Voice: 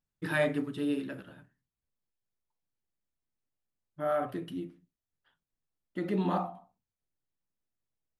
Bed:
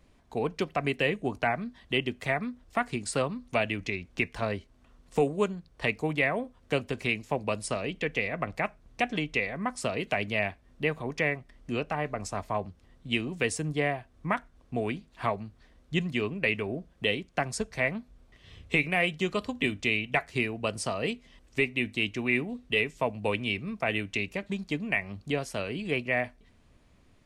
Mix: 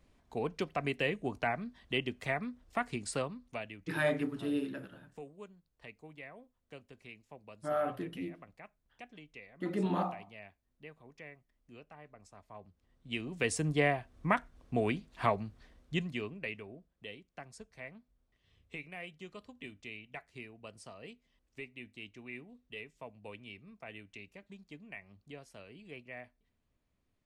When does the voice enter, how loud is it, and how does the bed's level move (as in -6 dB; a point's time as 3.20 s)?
3.65 s, -2.5 dB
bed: 3.12 s -5.5 dB
4.08 s -22.5 dB
12.41 s -22.5 dB
13.63 s -0.5 dB
15.63 s -0.5 dB
16.90 s -19 dB